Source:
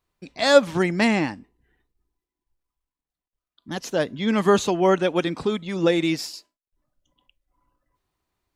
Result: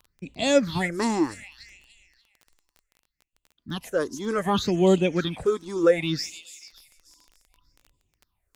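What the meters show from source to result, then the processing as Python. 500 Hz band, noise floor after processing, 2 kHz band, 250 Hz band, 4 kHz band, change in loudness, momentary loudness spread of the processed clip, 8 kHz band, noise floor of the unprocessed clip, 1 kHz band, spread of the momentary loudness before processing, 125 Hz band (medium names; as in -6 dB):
-2.5 dB, -81 dBFS, -5.5 dB, -2.5 dB, -3.0 dB, -3.0 dB, 16 LU, -1.0 dB, under -85 dBFS, -4.5 dB, 12 LU, -0.5 dB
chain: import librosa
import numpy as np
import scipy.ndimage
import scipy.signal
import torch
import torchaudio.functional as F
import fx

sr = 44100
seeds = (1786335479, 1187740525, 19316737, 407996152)

y = fx.low_shelf(x, sr, hz=260.0, db=4.5)
y = fx.echo_wet_highpass(y, sr, ms=292, feedback_pct=40, hz=3800.0, wet_db=-6.0)
y = fx.phaser_stages(y, sr, stages=6, low_hz=150.0, high_hz=1500.0, hz=0.66, feedback_pct=50)
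y = fx.dmg_crackle(y, sr, seeds[0], per_s=17.0, level_db=-39.0)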